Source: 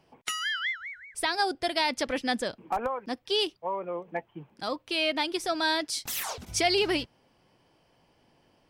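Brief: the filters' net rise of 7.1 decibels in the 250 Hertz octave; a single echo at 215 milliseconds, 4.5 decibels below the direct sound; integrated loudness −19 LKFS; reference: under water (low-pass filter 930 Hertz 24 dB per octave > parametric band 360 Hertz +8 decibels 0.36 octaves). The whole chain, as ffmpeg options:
ffmpeg -i in.wav -af "lowpass=frequency=930:width=0.5412,lowpass=frequency=930:width=1.3066,equalizer=frequency=250:width_type=o:gain=4,equalizer=frequency=360:width_type=o:width=0.36:gain=8,aecho=1:1:215:0.596,volume=8.5dB" out.wav

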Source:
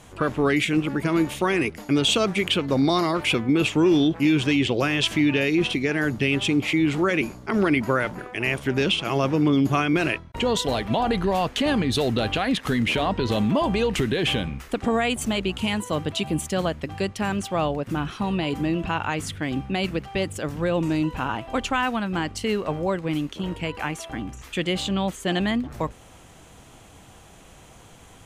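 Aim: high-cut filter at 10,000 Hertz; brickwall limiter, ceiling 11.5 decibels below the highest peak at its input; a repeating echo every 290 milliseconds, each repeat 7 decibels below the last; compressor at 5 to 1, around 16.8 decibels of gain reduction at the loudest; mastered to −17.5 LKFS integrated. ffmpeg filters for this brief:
ffmpeg -i in.wav -af "lowpass=10000,acompressor=threshold=-36dB:ratio=5,alimiter=level_in=7.5dB:limit=-24dB:level=0:latency=1,volume=-7.5dB,aecho=1:1:290|580|870|1160|1450:0.447|0.201|0.0905|0.0407|0.0183,volume=23dB" out.wav

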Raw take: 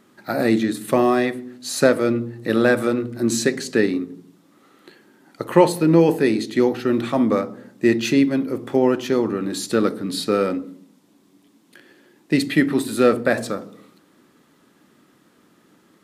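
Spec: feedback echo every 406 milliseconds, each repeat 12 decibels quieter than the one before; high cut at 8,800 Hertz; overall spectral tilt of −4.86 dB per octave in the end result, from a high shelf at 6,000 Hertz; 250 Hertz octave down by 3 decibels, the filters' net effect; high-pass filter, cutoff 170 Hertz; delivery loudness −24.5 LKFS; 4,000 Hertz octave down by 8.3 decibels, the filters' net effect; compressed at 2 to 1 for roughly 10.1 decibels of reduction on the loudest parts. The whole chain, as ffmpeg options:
ffmpeg -i in.wav -af "highpass=170,lowpass=8800,equalizer=frequency=250:width_type=o:gain=-3,equalizer=frequency=4000:width_type=o:gain=-6.5,highshelf=frequency=6000:gain=-9,acompressor=threshold=-29dB:ratio=2,aecho=1:1:406|812|1218:0.251|0.0628|0.0157,volume=5dB" out.wav

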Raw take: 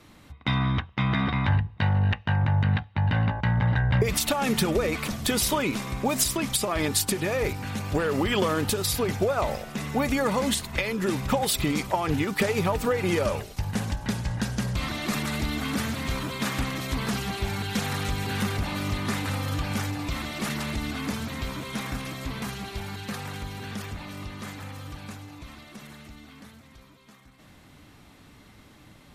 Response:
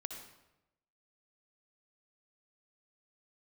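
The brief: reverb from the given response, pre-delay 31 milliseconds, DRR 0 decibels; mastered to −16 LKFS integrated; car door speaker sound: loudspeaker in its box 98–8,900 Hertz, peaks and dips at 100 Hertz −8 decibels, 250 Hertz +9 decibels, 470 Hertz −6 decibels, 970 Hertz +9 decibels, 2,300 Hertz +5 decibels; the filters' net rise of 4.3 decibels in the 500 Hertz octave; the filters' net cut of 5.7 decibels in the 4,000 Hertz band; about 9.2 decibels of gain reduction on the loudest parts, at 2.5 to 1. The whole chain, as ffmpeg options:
-filter_complex "[0:a]equalizer=frequency=500:width_type=o:gain=8,equalizer=frequency=4000:width_type=o:gain=-8,acompressor=threshold=-28dB:ratio=2.5,asplit=2[link_01][link_02];[1:a]atrim=start_sample=2205,adelay=31[link_03];[link_02][link_03]afir=irnorm=-1:irlink=0,volume=1.5dB[link_04];[link_01][link_04]amix=inputs=2:normalize=0,highpass=98,equalizer=frequency=100:width_type=q:width=4:gain=-8,equalizer=frequency=250:width_type=q:width=4:gain=9,equalizer=frequency=470:width_type=q:width=4:gain=-6,equalizer=frequency=970:width_type=q:width=4:gain=9,equalizer=frequency=2300:width_type=q:width=4:gain=5,lowpass=frequency=8900:width=0.5412,lowpass=frequency=8900:width=1.3066,volume=10.5dB"

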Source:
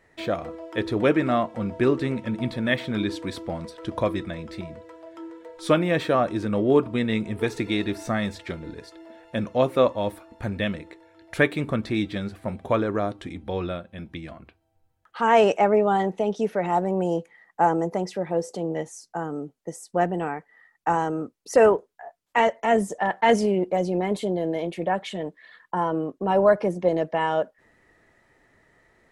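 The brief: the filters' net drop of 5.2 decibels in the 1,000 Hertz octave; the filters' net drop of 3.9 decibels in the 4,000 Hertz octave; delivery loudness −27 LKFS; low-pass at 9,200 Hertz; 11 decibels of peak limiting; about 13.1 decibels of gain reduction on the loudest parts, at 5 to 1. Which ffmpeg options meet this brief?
ffmpeg -i in.wav -af "lowpass=9200,equalizer=frequency=1000:width_type=o:gain=-7,equalizer=frequency=4000:width_type=o:gain=-4.5,acompressor=threshold=-29dB:ratio=5,volume=10.5dB,alimiter=limit=-16.5dB:level=0:latency=1" out.wav

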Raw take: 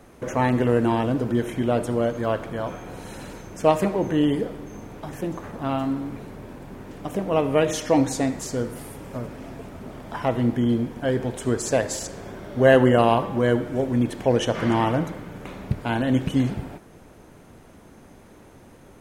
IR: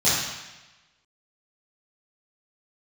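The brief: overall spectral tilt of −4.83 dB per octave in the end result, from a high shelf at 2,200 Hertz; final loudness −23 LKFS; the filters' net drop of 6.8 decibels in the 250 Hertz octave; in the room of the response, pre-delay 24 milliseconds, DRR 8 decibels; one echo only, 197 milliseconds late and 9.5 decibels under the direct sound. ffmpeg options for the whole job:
-filter_complex "[0:a]equalizer=frequency=250:width_type=o:gain=-8,highshelf=frequency=2200:gain=-9,aecho=1:1:197:0.335,asplit=2[link_01][link_02];[1:a]atrim=start_sample=2205,adelay=24[link_03];[link_02][link_03]afir=irnorm=-1:irlink=0,volume=-25dB[link_04];[link_01][link_04]amix=inputs=2:normalize=0,volume=3dB"

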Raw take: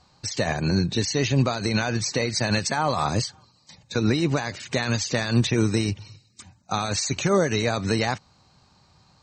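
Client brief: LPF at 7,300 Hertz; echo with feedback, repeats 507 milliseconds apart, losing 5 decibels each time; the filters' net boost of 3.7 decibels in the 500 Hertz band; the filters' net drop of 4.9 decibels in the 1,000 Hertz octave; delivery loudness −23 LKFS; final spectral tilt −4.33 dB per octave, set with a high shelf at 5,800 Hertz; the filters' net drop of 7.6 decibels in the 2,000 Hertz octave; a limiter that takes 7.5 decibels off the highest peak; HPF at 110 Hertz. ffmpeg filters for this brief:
ffmpeg -i in.wav -af "highpass=110,lowpass=7300,equalizer=frequency=500:width_type=o:gain=7,equalizer=frequency=1000:width_type=o:gain=-8.5,equalizer=frequency=2000:width_type=o:gain=-8.5,highshelf=frequency=5800:gain=8,alimiter=limit=-15dB:level=0:latency=1,aecho=1:1:507|1014|1521|2028|2535|3042|3549:0.562|0.315|0.176|0.0988|0.0553|0.031|0.0173,volume=2dB" out.wav

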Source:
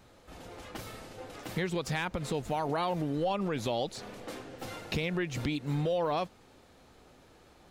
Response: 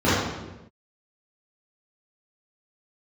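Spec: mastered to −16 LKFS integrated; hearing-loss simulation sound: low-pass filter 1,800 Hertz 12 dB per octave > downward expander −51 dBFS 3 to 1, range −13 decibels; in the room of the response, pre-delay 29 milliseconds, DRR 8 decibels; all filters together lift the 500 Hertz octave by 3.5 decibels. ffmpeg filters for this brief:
-filter_complex "[0:a]equalizer=frequency=500:width_type=o:gain=4,asplit=2[link_01][link_02];[1:a]atrim=start_sample=2205,adelay=29[link_03];[link_02][link_03]afir=irnorm=-1:irlink=0,volume=-29.5dB[link_04];[link_01][link_04]amix=inputs=2:normalize=0,lowpass=1800,agate=range=-13dB:threshold=-51dB:ratio=3,volume=14.5dB"

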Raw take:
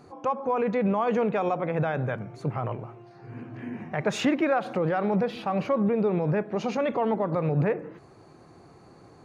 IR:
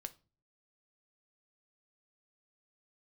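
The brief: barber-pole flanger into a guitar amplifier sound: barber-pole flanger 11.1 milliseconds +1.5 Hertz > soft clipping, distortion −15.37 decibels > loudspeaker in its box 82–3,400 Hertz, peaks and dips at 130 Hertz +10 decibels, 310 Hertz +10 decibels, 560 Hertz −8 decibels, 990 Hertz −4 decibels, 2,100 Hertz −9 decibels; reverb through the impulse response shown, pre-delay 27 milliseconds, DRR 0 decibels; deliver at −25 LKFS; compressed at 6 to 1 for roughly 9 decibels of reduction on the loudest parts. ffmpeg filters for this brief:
-filter_complex "[0:a]acompressor=threshold=-30dB:ratio=6,asplit=2[link_01][link_02];[1:a]atrim=start_sample=2205,adelay=27[link_03];[link_02][link_03]afir=irnorm=-1:irlink=0,volume=4dB[link_04];[link_01][link_04]amix=inputs=2:normalize=0,asplit=2[link_05][link_06];[link_06]adelay=11.1,afreqshift=1.5[link_07];[link_05][link_07]amix=inputs=2:normalize=1,asoftclip=threshold=-28.5dB,highpass=82,equalizer=frequency=130:width_type=q:width=4:gain=10,equalizer=frequency=310:width_type=q:width=4:gain=10,equalizer=frequency=560:width_type=q:width=4:gain=-8,equalizer=frequency=990:width_type=q:width=4:gain=-4,equalizer=frequency=2100:width_type=q:width=4:gain=-9,lowpass=frequency=3400:width=0.5412,lowpass=frequency=3400:width=1.3066,volume=10.5dB"

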